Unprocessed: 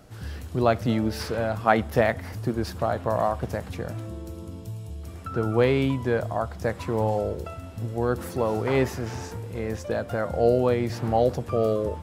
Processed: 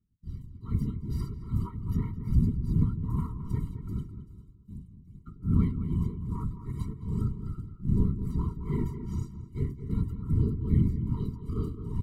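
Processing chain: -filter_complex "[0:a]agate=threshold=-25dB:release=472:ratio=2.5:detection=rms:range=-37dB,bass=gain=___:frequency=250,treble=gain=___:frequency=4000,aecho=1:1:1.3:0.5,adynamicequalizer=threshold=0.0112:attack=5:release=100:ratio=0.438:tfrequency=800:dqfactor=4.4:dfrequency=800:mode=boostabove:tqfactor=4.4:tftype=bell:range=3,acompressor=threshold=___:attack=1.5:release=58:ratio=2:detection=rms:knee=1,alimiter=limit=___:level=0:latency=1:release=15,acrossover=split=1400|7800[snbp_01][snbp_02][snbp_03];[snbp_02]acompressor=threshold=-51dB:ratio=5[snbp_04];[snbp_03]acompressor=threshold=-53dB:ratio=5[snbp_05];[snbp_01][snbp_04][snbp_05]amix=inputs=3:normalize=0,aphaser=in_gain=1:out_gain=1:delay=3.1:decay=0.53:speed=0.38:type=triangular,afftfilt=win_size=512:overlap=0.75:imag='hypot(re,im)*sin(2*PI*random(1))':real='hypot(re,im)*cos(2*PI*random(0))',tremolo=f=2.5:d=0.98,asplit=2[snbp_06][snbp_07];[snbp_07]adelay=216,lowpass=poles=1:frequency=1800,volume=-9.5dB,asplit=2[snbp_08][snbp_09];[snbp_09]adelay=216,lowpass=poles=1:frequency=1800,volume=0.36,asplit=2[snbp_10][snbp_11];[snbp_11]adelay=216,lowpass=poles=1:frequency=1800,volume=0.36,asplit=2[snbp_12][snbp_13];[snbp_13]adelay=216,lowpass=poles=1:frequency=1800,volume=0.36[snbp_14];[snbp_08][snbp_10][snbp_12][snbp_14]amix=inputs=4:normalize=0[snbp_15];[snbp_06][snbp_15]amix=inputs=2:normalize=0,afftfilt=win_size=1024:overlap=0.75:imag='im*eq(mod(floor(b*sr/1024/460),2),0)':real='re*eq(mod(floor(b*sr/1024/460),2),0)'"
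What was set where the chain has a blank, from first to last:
14, 4, -18dB, -13.5dB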